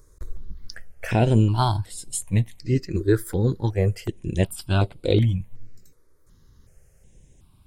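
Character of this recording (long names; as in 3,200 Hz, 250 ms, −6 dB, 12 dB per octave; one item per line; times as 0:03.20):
notches that jump at a steady rate 2.7 Hz 760–6,000 Hz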